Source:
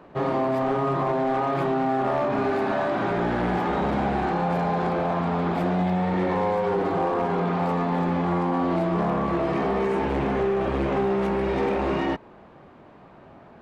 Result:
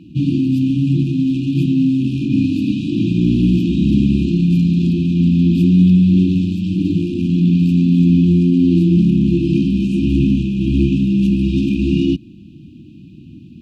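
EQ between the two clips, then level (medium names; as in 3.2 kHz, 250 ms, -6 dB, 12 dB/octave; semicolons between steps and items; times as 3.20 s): high-pass 68 Hz; brick-wall FIR band-stop 350–2400 Hz; bass shelf 370 Hz +8 dB; +8.5 dB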